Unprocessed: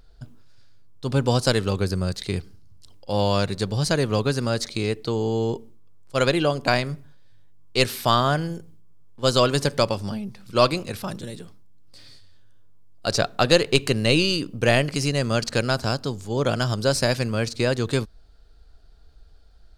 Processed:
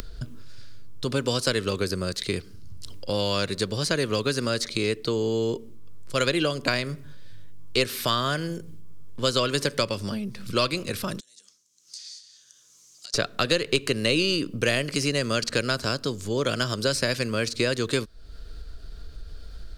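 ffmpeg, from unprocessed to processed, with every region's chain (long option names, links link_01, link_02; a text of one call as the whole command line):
ffmpeg -i in.wav -filter_complex "[0:a]asettb=1/sr,asplit=3[link_01][link_02][link_03];[link_01]atrim=end=11.204[link_04];[link_02]atrim=start=11.2:end=13.14,asetpts=PTS-STARTPTS,afade=type=in:duration=0.004:curve=qsin,afade=type=out:start_time=1.936:duration=0.004:curve=qsin,acompressor=threshold=-38dB:ratio=12:attack=3.2:release=140:knee=1:detection=peak,bandpass=frequency=6300:width_type=q:width=4.9,afreqshift=26[link_05];[link_03]atrim=start=13.136[link_06];[link_04][link_05]acrossfade=duration=0.004:curve1=hsin:curve2=qsin[link_07];[link_07][link_06]acrossfade=duration=0.004:curve1=qsin:curve2=hsin,acrossover=split=260|1600|3300[link_08][link_09][link_10][link_11];[link_08]acompressor=threshold=-37dB:ratio=4[link_12];[link_09]acompressor=threshold=-25dB:ratio=4[link_13];[link_10]acompressor=threshold=-31dB:ratio=4[link_14];[link_11]acompressor=threshold=-32dB:ratio=4[link_15];[link_12][link_13][link_14][link_15]amix=inputs=4:normalize=0,equalizer=frequency=800:width=3.1:gain=-12,acompressor=mode=upward:threshold=-29dB:ratio=2.5,volume=3dB" out.wav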